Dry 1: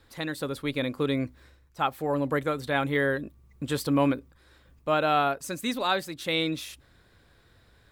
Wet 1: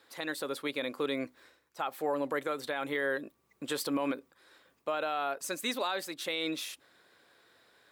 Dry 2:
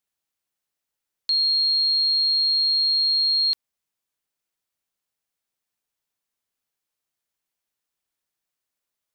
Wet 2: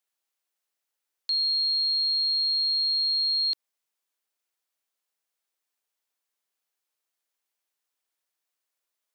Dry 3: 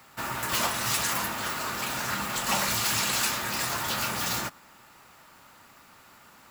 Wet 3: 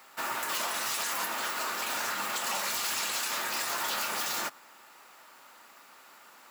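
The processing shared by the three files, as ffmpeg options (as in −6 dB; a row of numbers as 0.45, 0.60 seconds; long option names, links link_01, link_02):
-af "highpass=370,alimiter=limit=-22dB:level=0:latency=1:release=71"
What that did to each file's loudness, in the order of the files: −6.5, −4.5, −3.5 LU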